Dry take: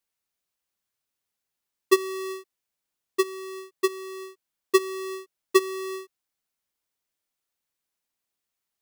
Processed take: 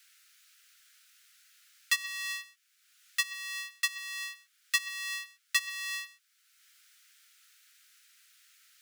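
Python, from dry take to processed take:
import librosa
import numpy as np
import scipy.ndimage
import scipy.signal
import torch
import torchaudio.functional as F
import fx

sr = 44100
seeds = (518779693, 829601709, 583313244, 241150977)

y = scipy.signal.sosfilt(scipy.signal.butter(16, 1300.0, 'highpass', fs=sr, output='sos'), x)
y = fx.high_shelf(y, sr, hz=10000.0, db=-8.5)
y = y + 10.0 ** (-21.0 / 20.0) * np.pad(y, (int(121 * sr / 1000.0), 0))[:len(y)]
y = fx.band_squash(y, sr, depth_pct=70)
y = F.gain(torch.from_numpy(y), 5.0).numpy()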